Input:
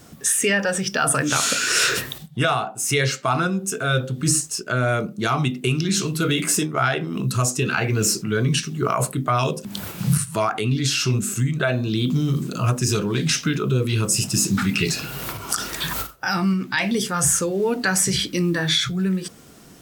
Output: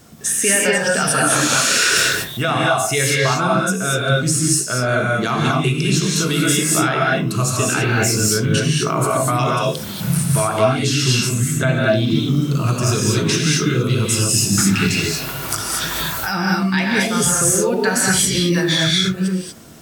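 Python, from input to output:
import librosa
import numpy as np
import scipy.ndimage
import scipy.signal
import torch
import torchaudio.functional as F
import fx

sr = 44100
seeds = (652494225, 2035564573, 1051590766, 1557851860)

y = fx.rev_gated(x, sr, seeds[0], gate_ms=260, shape='rising', drr_db=-3.0)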